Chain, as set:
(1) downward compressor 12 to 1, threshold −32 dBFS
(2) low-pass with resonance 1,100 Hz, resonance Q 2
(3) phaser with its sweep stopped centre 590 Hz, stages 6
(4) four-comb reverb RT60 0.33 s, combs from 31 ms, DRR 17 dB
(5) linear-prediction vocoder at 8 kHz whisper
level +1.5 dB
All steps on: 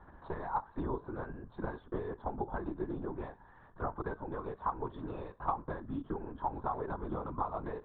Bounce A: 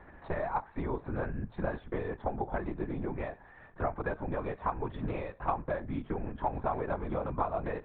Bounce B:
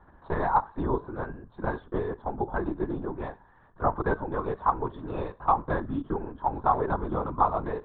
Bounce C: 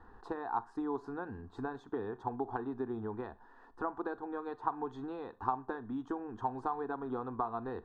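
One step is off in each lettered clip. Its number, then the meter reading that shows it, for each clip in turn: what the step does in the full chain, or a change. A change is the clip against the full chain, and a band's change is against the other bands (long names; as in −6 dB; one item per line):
3, 1 kHz band −3.0 dB
1, average gain reduction 7.0 dB
5, 125 Hz band −6.5 dB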